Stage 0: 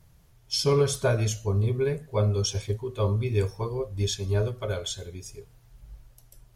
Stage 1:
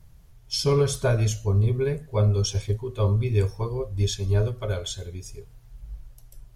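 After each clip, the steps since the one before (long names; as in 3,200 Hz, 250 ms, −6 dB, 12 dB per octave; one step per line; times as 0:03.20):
low-shelf EQ 80 Hz +10.5 dB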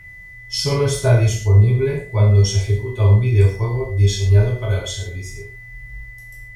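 steady tone 2,000 Hz −41 dBFS
reverb whose tail is shaped and stops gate 170 ms falling, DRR −3.5 dB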